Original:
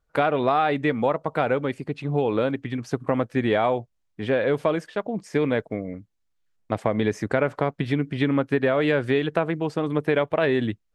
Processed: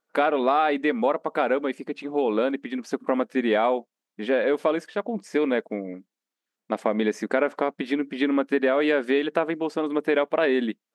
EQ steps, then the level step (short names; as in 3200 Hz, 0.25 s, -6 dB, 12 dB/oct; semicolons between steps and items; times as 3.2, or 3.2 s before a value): brick-wall FIR high-pass 180 Hz; 0.0 dB